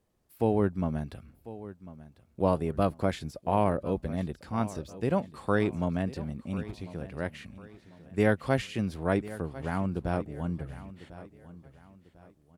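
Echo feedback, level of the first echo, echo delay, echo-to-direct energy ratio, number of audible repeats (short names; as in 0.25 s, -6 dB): 35%, -16.5 dB, 1.047 s, -16.0 dB, 3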